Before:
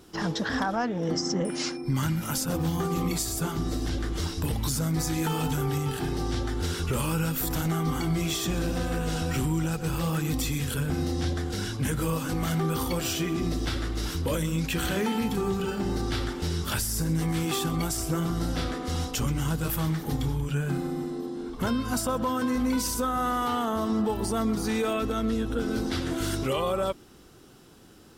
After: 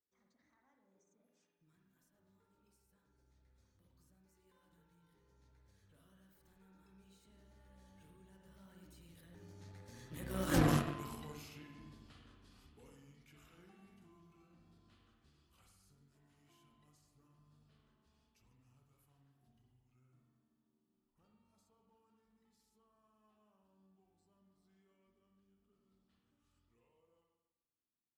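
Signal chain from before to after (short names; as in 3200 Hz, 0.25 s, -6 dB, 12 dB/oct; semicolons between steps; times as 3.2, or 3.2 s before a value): Doppler pass-by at 10.58, 49 m/s, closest 3 m; spring tank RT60 1.1 s, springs 47/51 ms, chirp 40 ms, DRR 1.5 dB; added harmonics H 5 -22 dB, 7 -19 dB, 8 -25 dB, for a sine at -18.5 dBFS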